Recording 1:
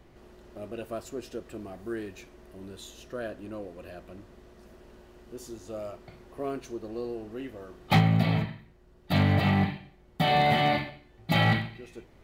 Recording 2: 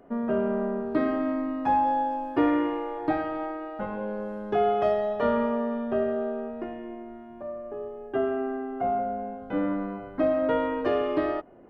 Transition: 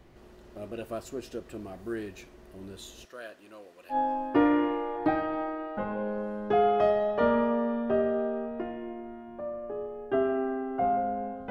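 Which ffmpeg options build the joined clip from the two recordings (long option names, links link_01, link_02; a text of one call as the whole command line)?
ffmpeg -i cue0.wav -i cue1.wav -filter_complex "[0:a]asettb=1/sr,asplit=3[link_01][link_02][link_03];[link_01]atrim=end=3.054[link_04];[link_02]atrim=start=3.05:end=3.97,asetpts=PTS-STARTPTS,afade=type=in:duration=0.004:curve=qsin,afade=type=out:start_time=0.916:duration=0.004:curve=qsin,highpass=frequency=1300:poles=1[link_05];[link_03]atrim=start=3.966[link_06];[link_04][link_05]acrossfade=duration=0.004:curve1=hsin:curve2=qsin[link_07];[link_07][link_06]acrossfade=duration=0.004:curve1=qsin:curve2=hsin,apad=whole_dur=11.5,atrim=end=11.5,atrim=end=3.97,asetpts=PTS-STARTPTS[link_08];[1:a]atrim=start=1.91:end=9.52,asetpts=PTS-STARTPTS[link_09];[link_08][link_09]acrossfade=duration=0.08:curve1=tri:curve2=tri" out.wav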